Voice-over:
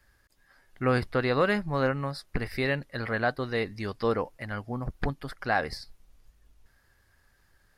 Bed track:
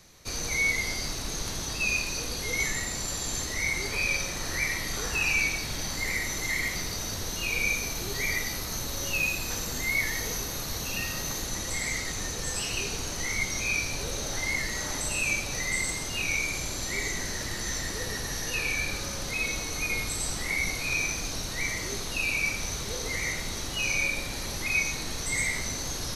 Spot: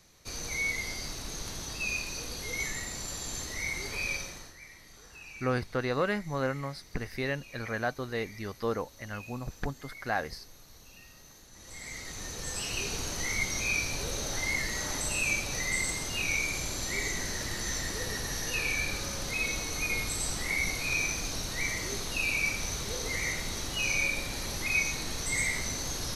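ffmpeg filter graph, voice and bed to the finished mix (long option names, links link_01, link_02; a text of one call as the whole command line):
ffmpeg -i stem1.wav -i stem2.wav -filter_complex "[0:a]adelay=4600,volume=-4.5dB[link_01];[1:a]volume=14.5dB,afade=type=out:start_time=4.12:duration=0.42:silence=0.158489,afade=type=in:start_time=11.52:duration=1.46:silence=0.1[link_02];[link_01][link_02]amix=inputs=2:normalize=0" out.wav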